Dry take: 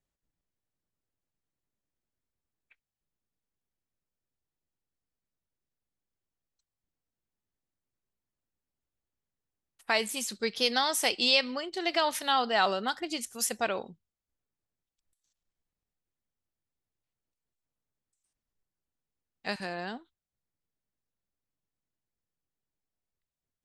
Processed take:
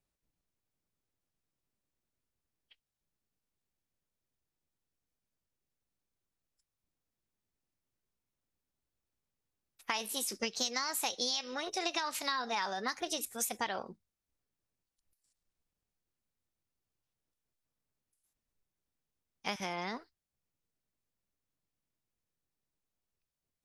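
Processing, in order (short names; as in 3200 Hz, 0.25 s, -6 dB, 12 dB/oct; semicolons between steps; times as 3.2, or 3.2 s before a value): bell 4500 Hz +2 dB; compressor 6:1, threshold -31 dBFS, peak gain reduction 13 dB; formant shift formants +4 st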